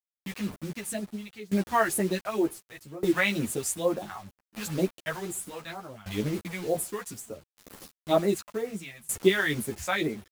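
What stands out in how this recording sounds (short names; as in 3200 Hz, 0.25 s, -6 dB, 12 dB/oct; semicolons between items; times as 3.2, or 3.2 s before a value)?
phasing stages 2, 2.1 Hz, lowest notch 280–4100 Hz; a quantiser's noise floor 8-bit, dither none; tremolo saw down 0.66 Hz, depth 95%; a shimmering, thickened sound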